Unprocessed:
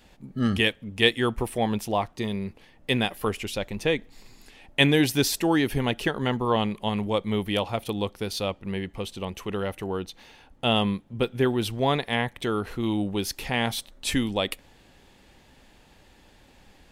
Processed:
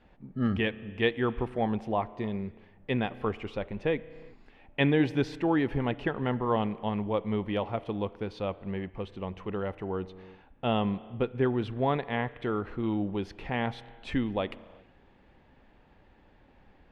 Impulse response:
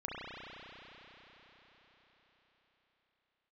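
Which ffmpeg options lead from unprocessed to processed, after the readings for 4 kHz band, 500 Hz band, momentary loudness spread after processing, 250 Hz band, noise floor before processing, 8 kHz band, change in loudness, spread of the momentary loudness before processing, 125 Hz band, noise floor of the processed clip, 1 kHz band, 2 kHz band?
-13.5 dB, -3.5 dB, 10 LU, -3.5 dB, -57 dBFS, under -25 dB, -4.5 dB, 10 LU, -3.5 dB, -60 dBFS, -3.5 dB, -7.0 dB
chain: -filter_complex "[0:a]lowpass=1.9k,asplit=2[a][b];[1:a]atrim=start_sample=2205,afade=t=out:st=0.44:d=0.01,atrim=end_sample=19845[c];[b][c]afir=irnorm=-1:irlink=0,volume=-18.5dB[d];[a][d]amix=inputs=2:normalize=0,volume=-4dB"

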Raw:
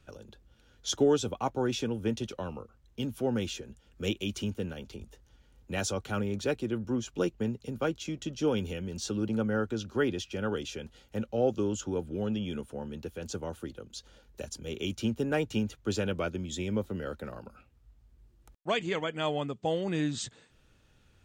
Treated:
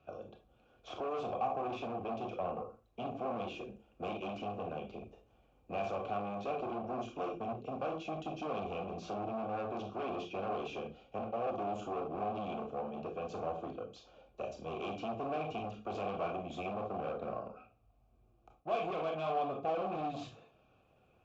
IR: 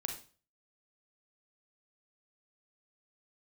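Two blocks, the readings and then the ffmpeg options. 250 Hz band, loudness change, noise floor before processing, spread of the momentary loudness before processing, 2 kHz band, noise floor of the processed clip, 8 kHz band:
-11.0 dB, -6.5 dB, -64 dBFS, 12 LU, -9.5 dB, -69 dBFS, under -20 dB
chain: -filter_complex "[0:a]acrossover=split=2700[a][b];[a]alimiter=level_in=0.5dB:limit=-24dB:level=0:latency=1:release=23,volume=-0.5dB[c];[b]aeval=exprs='0.02*(abs(mod(val(0)/0.02+3,4)-2)-1)':c=same[d];[c][d]amix=inputs=2:normalize=0,tiltshelf=f=700:g=3.5[e];[1:a]atrim=start_sample=2205,asetrate=57330,aresample=44100[f];[e][f]afir=irnorm=-1:irlink=0,aresample=16000,asoftclip=type=hard:threshold=-37.5dB,aresample=44100,asplit=3[g][h][i];[g]bandpass=f=730:t=q:w=8,volume=0dB[j];[h]bandpass=f=1.09k:t=q:w=8,volume=-6dB[k];[i]bandpass=f=2.44k:t=q:w=8,volume=-9dB[l];[j][k][l]amix=inputs=3:normalize=0,lowshelf=f=270:g=10.5,volume=14.5dB" -ar 48000 -c:a libopus -b:a 48k

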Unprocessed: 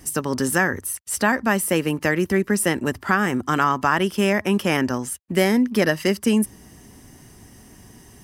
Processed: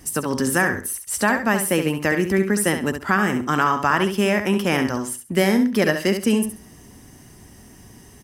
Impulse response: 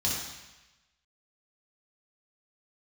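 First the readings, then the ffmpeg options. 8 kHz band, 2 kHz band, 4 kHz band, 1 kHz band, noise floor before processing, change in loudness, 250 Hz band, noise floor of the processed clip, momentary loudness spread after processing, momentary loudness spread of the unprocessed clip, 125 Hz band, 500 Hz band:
+0.5 dB, +1.0 dB, +0.5 dB, +0.5 dB, -49 dBFS, +0.5 dB, +0.5 dB, -47 dBFS, 6 LU, 6 LU, +0.5 dB, +0.5 dB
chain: -af "aecho=1:1:68|136|204:0.398|0.0876|0.0193"

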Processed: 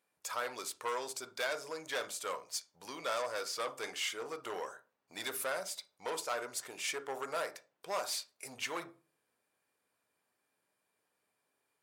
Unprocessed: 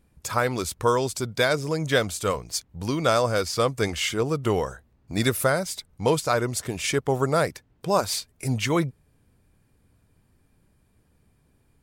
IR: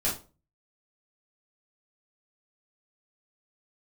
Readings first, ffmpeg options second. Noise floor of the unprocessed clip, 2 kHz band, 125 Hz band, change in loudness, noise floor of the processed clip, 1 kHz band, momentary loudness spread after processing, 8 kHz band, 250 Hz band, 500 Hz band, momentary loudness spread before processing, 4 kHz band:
-65 dBFS, -11.0 dB, -36.0 dB, -13.5 dB, -83 dBFS, -12.5 dB, 7 LU, -9.5 dB, -24.0 dB, -16.0 dB, 7 LU, -10.5 dB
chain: -filter_complex "[0:a]asplit=2[a][b];[1:a]atrim=start_sample=2205,lowpass=7.5k,highshelf=f=3.3k:g=-10.5[c];[b][c]afir=irnorm=-1:irlink=0,volume=-15.5dB[d];[a][d]amix=inputs=2:normalize=0,asoftclip=type=tanh:threshold=-18.5dB,highpass=650,volume=-8.5dB"

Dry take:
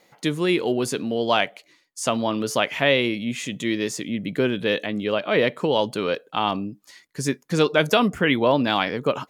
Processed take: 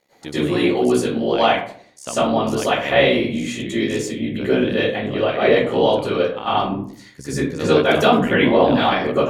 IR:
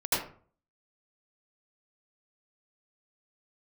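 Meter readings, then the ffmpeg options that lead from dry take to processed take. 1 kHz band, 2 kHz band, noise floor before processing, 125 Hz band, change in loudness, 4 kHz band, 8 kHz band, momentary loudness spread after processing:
+5.5 dB, +2.5 dB, -63 dBFS, +3.5 dB, +4.5 dB, +1.5 dB, +0.5 dB, 10 LU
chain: -filter_complex "[0:a]bandreject=f=5k:w=29,tremolo=f=68:d=0.889[a];[1:a]atrim=start_sample=2205,asetrate=34839,aresample=44100[b];[a][b]afir=irnorm=-1:irlink=0,volume=-4.5dB"

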